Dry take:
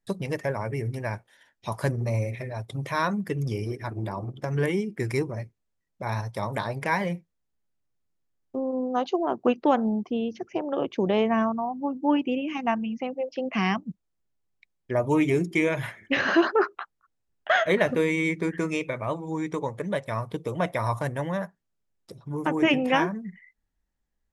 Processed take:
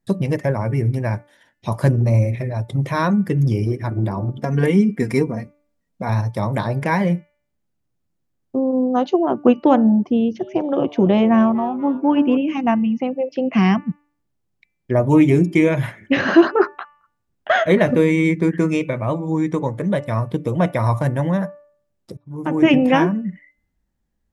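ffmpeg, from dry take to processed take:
ffmpeg -i in.wav -filter_complex "[0:a]asettb=1/sr,asplit=3[link_01][link_02][link_03];[link_01]atrim=end=4.374[link_04];[link_02]atrim=start=4.37:end=6.09,asetpts=PTS-STARTPTS,afade=type=in:duration=0.004:curve=qsin,afade=type=out:start_time=1.716:duration=0.004:curve=qsin,aecho=1:1:4.3:0.65,atrim=end_sample=75852[link_05];[link_03]atrim=start=6.086[link_06];[link_04][link_05]acrossfade=duration=0.004:curve1=hsin:curve2=qsin[link_07];[link_07][link_06]acrossfade=duration=0.004:curve1=qsin:curve2=hsin,asettb=1/sr,asplit=3[link_08][link_09][link_10];[link_08]atrim=end=10.154[link_11];[link_09]atrim=start=10.15:end=12.37,asetpts=PTS-STARTPTS,afade=type=in:duration=0.004:curve=qsin,afade=type=out:start_time=2.216:duration=0.004:curve=qsin,asplit=5[link_12][link_13][link_14][link_15][link_16];[link_13]adelay=242,afreqshift=150,volume=-18dB[link_17];[link_14]adelay=484,afreqshift=300,volume=-24.7dB[link_18];[link_15]adelay=726,afreqshift=450,volume=-31.5dB[link_19];[link_16]adelay=968,afreqshift=600,volume=-38.2dB[link_20];[link_12][link_17][link_18][link_19][link_20]amix=inputs=5:normalize=0,atrim=end_sample=97902[link_21];[link_10]atrim=start=12.366[link_22];[link_11][link_21]acrossfade=duration=0.004:curve1=hsin:curve2=qsin[link_23];[link_23][link_22]acrossfade=duration=0.004:curve1=qsin:curve2=hsin,asplit=2[link_24][link_25];[link_24]atrim=end=22.17,asetpts=PTS-STARTPTS,afade=type=out:start_time=22.166:duration=0.004:curve=hsin[link_26];[link_25]atrim=start=22.17,asetpts=PTS-STARTPTS,afade=type=in:duration=0.54[link_27];[link_26][link_27]concat=n=2:v=0:a=1,equalizer=frequency=160:width=0.31:gain=9.5,bandreject=frequency=430:width=12,bandreject=frequency=292.6:width_type=h:width=4,bandreject=frequency=585.2:width_type=h:width=4,bandreject=frequency=877.8:width_type=h:width=4,bandreject=frequency=1170.4:width_type=h:width=4,bandreject=frequency=1463:width_type=h:width=4,bandreject=frequency=1755.6:width_type=h:width=4,bandreject=frequency=2048.2:width_type=h:width=4,bandreject=frequency=2340.8:width_type=h:width=4,bandreject=frequency=2633.4:width_type=h:width=4,bandreject=frequency=2926:width_type=h:width=4,volume=2.5dB" out.wav

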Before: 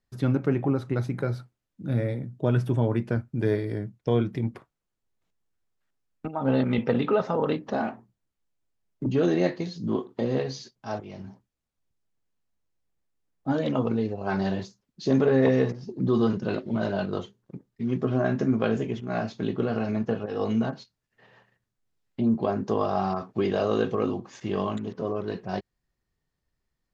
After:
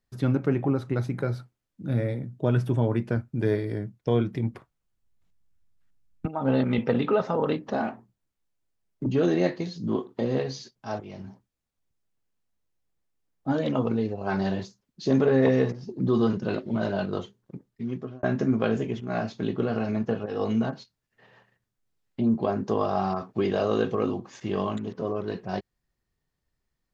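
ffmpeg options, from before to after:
ffmpeg -i in.wav -filter_complex "[0:a]asettb=1/sr,asplit=3[link_01][link_02][link_03];[link_01]atrim=end=4.384[link_04];[link_02]atrim=start=4.38:end=6.26,asetpts=PTS-STARTPTS,afade=type=in:duration=0.004:curve=qsin,afade=type=out:start_time=1.876:duration=0.004:curve=qsin,asubboost=boost=10:cutoff=190[link_05];[link_03]atrim=start=6.256[link_06];[link_04][link_05]acrossfade=duration=0.004:curve1=hsin:curve2=qsin[link_07];[link_07][link_06]acrossfade=duration=0.004:curve1=qsin:curve2=hsin,asplit=2[link_08][link_09];[link_08]atrim=end=18.23,asetpts=PTS-STARTPTS,afade=type=out:start_time=17.68:duration=0.55[link_10];[link_09]atrim=start=18.23,asetpts=PTS-STARTPTS,afade=type=in:duration=0.004:curve=hsin[link_11];[link_10][link_11]concat=n=2:v=0:a=1" out.wav

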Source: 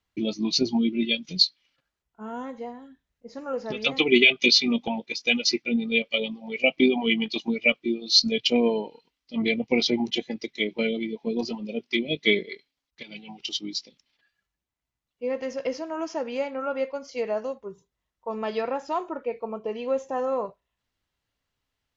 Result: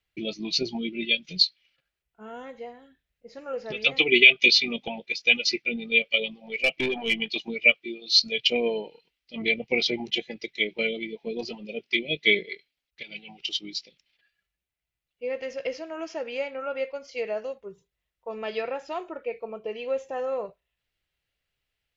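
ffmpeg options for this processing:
ffmpeg -i in.wav -filter_complex "[0:a]asettb=1/sr,asplit=3[link_01][link_02][link_03];[link_01]atrim=end=6.344[link_04];[link_02]atrim=start=6.34:end=7.2,asetpts=PTS-STARTPTS,afade=type=in:duration=0.004:curve=qsin,afade=type=out:start_time=0.856:duration=0.004:curve=qsin,aeval=exprs='(tanh(7.08*val(0)+0.15)-tanh(0.15))/7.08':channel_layout=same[link_05];[link_03]atrim=start=7.196[link_06];[link_04][link_05]acrossfade=duration=0.004:curve1=hsin:curve2=qsin[link_07];[link_07][link_06]acrossfade=duration=0.004:curve1=qsin:curve2=hsin,asettb=1/sr,asplit=3[link_08][link_09][link_10];[link_08]atrim=end=7.714[link_11];[link_09]atrim=start=7.71:end=8.39,asetpts=PTS-STARTPTS,afade=type=in:duration=0.004:curve=qsin,afade=type=out:start_time=0.676:duration=0.004:curve=qsin,lowshelf=frequency=390:gain=-7.5[link_12];[link_10]atrim=start=8.386[link_13];[link_11][link_12]acrossfade=duration=0.004:curve1=hsin:curve2=qsin[link_14];[link_14][link_13]acrossfade=duration=0.004:curve1=qsin:curve2=hsin,equalizer=frequency=100:width_type=o:width=0.67:gain=-4,equalizer=frequency=250:width_type=o:width=0.67:gain=-10,equalizer=frequency=1000:width_type=o:width=0.67:gain=-9,equalizer=frequency=2500:width_type=o:width=0.67:gain=5,equalizer=frequency=6300:width_type=o:width=0.67:gain=-5" out.wav

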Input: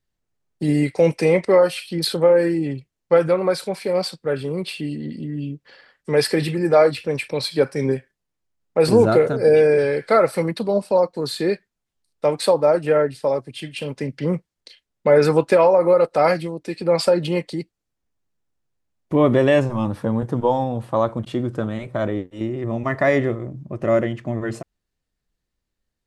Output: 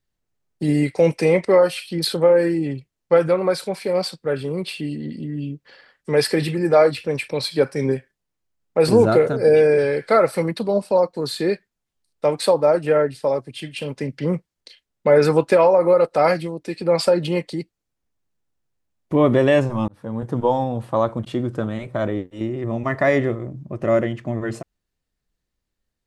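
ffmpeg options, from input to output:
ffmpeg -i in.wav -filter_complex "[0:a]asplit=2[link_01][link_02];[link_01]atrim=end=19.88,asetpts=PTS-STARTPTS,afade=type=out:start_time=19.876:duration=0.004:curve=hsin[link_03];[link_02]atrim=start=19.88,asetpts=PTS-STARTPTS,afade=type=in:duration=0.51[link_04];[link_03][link_04]concat=n=2:v=0:a=1" out.wav

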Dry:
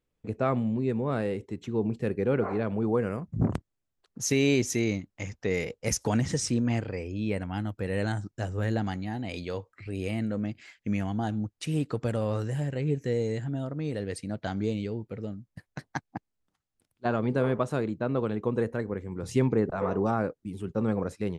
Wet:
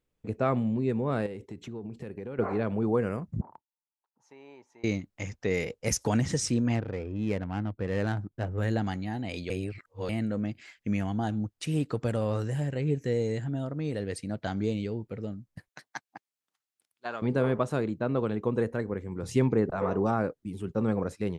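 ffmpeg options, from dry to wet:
ffmpeg -i in.wav -filter_complex "[0:a]asettb=1/sr,asplit=3[link_01][link_02][link_03];[link_01]atrim=end=1.264[link_04];[link_02]atrim=start=1.26:end=2.39,asetpts=PTS-STARTPTS,afade=type=in:duration=0.004:curve=qsin,afade=type=out:start_time=1.126:duration=0.004:curve=qsin,acompressor=threshold=-35dB:ratio=6:attack=3.2:release=140:knee=1:detection=peak[link_05];[link_03]atrim=start=2.386[link_06];[link_04][link_05]acrossfade=duration=0.004:curve1=hsin:curve2=qsin[link_07];[link_07][link_06]acrossfade=duration=0.004:curve1=qsin:curve2=hsin,asettb=1/sr,asplit=3[link_08][link_09][link_10];[link_08]atrim=end=3.414[link_11];[link_09]atrim=start=3.41:end=4.84,asetpts=PTS-STARTPTS,afade=type=in:duration=0.004:curve=qsin,afade=type=out:start_time=1.426:duration=0.004:curve=qsin,bandpass=frequency=900:width_type=q:width=11[link_12];[link_10]atrim=start=4.836[link_13];[link_11][link_12]acrossfade=duration=0.004:curve1=hsin:curve2=qsin[link_14];[link_14][link_13]acrossfade=duration=0.004:curve1=qsin:curve2=hsin,asettb=1/sr,asplit=3[link_15][link_16][link_17];[link_15]atrim=end=6.754[link_18];[link_16]atrim=start=6.75:end=8.58,asetpts=PTS-STARTPTS,afade=type=in:duration=0.004:curve=qsin,afade=type=out:start_time=1.826:duration=0.004:curve=qsin,adynamicsmooth=sensitivity=5.5:basefreq=1000[link_19];[link_17]atrim=start=8.576[link_20];[link_18][link_19]acrossfade=duration=0.004:curve1=hsin:curve2=qsin[link_21];[link_21][link_20]acrossfade=duration=0.004:curve1=qsin:curve2=hsin,asettb=1/sr,asplit=3[link_22][link_23][link_24];[link_22]atrim=end=15.684[link_25];[link_23]atrim=start=15.68:end=17.22,asetpts=PTS-STARTPTS,afade=type=in:duration=0.004:curve=qsin,afade=type=out:start_time=1.536:duration=0.004:curve=qsin,highpass=frequency=1500:poles=1[link_26];[link_24]atrim=start=17.216[link_27];[link_25][link_26]acrossfade=duration=0.004:curve1=hsin:curve2=qsin[link_28];[link_28][link_27]acrossfade=duration=0.004:curve1=qsin:curve2=hsin,asplit=3[link_29][link_30][link_31];[link_29]atrim=end=9.502[link_32];[link_30]atrim=start=9.498:end=10.092,asetpts=PTS-STARTPTS,areverse[link_33];[link_31]atrim=start=10.088[link_34];[link_32][link_33]acrossfade=duration=0.004:curve1=hsin:curve2=hsin[link_35];[link_35][link_34]acrossfade=duration=0.004:curve1=hsin:curve2=hsin" out.wav

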